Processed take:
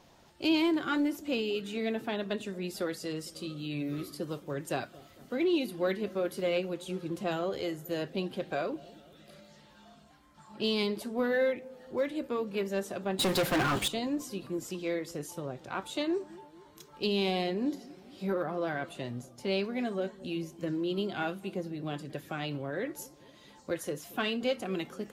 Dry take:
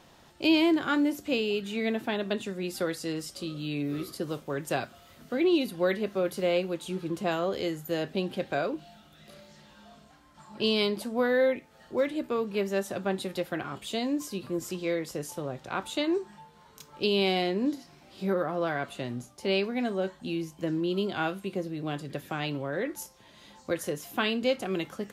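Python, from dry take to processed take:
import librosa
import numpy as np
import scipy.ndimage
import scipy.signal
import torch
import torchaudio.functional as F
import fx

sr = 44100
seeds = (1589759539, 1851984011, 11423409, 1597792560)

p1 = fx.spec_quant(x, sr, step_db=15)
p2 = np.clip(10.0 ** (23.5 / 20.0) * p1, -1.0, 1.0) / 10.0 ** (23.5 / 20.0)
p3 = p1 + (p2 * librosa.db_to_amplitude(-11.5))
p4 = fx.leveller(p3, sr, passes=5, at=(13.19, 13.88))
p5 = fx.echo_wet_lowpass(p4, sr, ms=227, feedback_pct=56, hz=670.0, wet_db=-19.5)
y = p5 * librosa.db_to_amplitude(-5.0)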